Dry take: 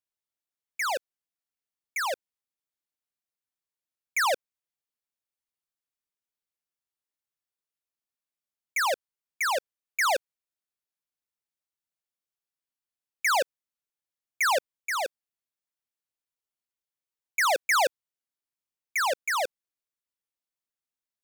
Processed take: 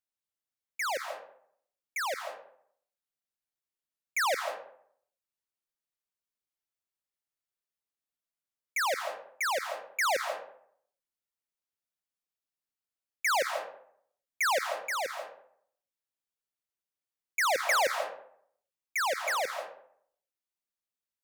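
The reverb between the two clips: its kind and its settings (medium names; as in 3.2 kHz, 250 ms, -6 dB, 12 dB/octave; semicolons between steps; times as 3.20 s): algorithmic reverb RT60 0.64 s, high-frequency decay 0.55×, pre-delay 115 ms, DRR 7 dB; trim -3.5 dB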